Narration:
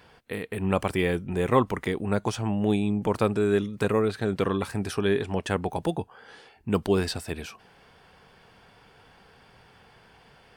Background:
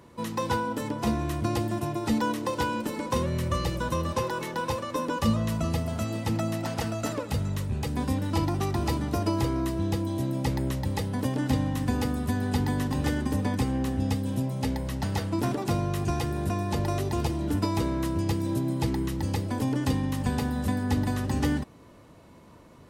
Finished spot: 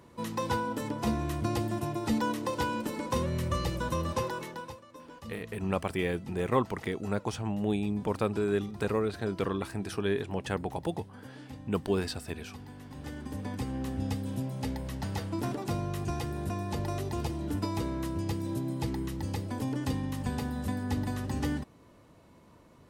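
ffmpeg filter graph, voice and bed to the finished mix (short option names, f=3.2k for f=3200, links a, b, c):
-filter_complex "[0:a]adelay=5000,volume=-5.5dB[a];[1:a]volume=11.5dB,afade=t=out:st=4.22:d=0.57:silence=0.141254,afade=t=in:st=12.82:d=1.18:silence=0.188365[b];[a][b]amix=inputs=2:normalize=0"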